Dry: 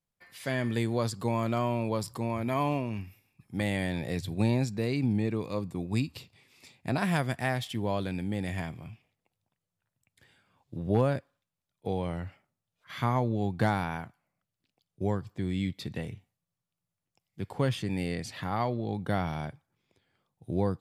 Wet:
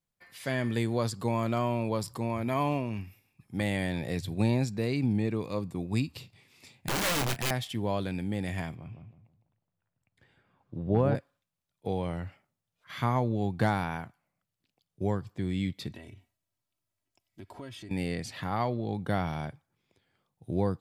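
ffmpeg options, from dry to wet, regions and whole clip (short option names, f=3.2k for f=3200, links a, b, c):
-filter_complex "[0:a]asettb=1/sr,asplit=3[a][b][c];[a]atrim=end=6.184[d];[b]atrim=start=6.18:end=7.51,asetpts=PTS-STARTPTS,afade=t=in:d=0.004:c=qsin,afade=t=out:st=1.326:d=0.004:c=qsin,equalizer=f=120:t=o:w=1.2:g=4.5,aeval=exprs='(mod(16.8*val(0)+1,2)-1)/16.8':c=same,asplit=2[e][f];[f]adelay=32,volume=-13dB[g];[e][g]amix=inputs=2:normalize=0,atrim=end_sample=58653[h];[c]atrim=start=7.506[i];[d][h]acrossfade=d=0.004:c1=hsin:c2=qsin[j];[j][i]acrossfade=d=0.004:c1=qsin:c2=hsin,asettb=1/sr,asplit=3[k][l][m];[k]atrim=end=8.754[n];[l]atrim=start=8.75:end=11.15,asetpts=PTS-STARTPTS,afade=t=in:d=0.004:c=qsin,afade=t=out:st=2.396:d=0.004:c=qsin,lowpass=f=1.8k:p=1,asplit=2[o][p];[p]adelay=159,lowpass=f=1.1k:p=1,volume=-5dB,asplit=2[q][r];[r]adelay=159,lowpass=f=1.1k:p=1,volume=0.33,asplit=2[s][t];[t]adelay=159,lowpass=f=1.1k:p=1,volume=0.33,asplit=2[u][v];[v]adelay=159,lowpass=f=1.1k:p=1,volume=0.33[w];[o][q][s][u][w]amix=inputs=5:normalize=0,atrim=end_sample=105840[x];[m]atrim=start=11.146[y];[n][x]acrossfade=d=0.004:c1=hsin:c2=qsin[z];[z][y]acrossfade=d=0.004:c1=qsin:c2=hsin,asettb=1/sr,asplit=3[aa][ab][ac];[aa]atrim=end=15.904[ad];[ab]atrim=start=15.9:end=17.91,asetpts=PTS-STARTPTS,afade=t=in:d=0.004:c=qsin,afade=t=out:st=2.006:d=0.004:c=qsin,aecho=1:1:3.1:0.76,atrim=end_sample=88641,acompressor=threshold=-45dB:ratio=3:attack=3.2:release=140:knee=1:detection=peak[ae];[ac]atrim=start=17.906[af];[ad][ae]acrossfade=d=0.004:c1=hsin:c2=qsin[ag];[ag][af]acrossfade=d=0.004:c1=qsin:c2=hsin"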